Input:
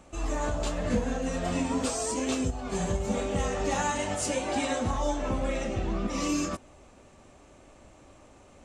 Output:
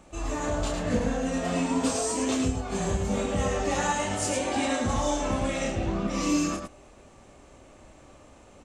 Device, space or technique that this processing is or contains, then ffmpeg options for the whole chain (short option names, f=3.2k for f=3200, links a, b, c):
slapback doubling: -filter_complex "[0:a]asplit=3[a][b][c];[b]adelay=30,volume=-5dB[d];[c]adelay=108,volume=-4.5dB[e];[a][d][e]amix=inputs=3:normalize=0,asettb=1/sr,asplit=3[f][g][h];[f]atrim=end=4.894[i];[g]atrim=start=4.89:end=5.72,asetpts=PTS-STARTPTS,afade=t=in:d=0.004:c=qsin,afade=t=out:st=0.826:d=0.004:c=qsin,equalizer=f=8.5k:w=0.3:g=6[j];[h]atrim=start=5.716[k];[i][j]acrossfade=d=0.004:c1=hsin:c2=qsin[l];[l][k]acrossfade=d=0.004:c1=qsin:c2=hsin"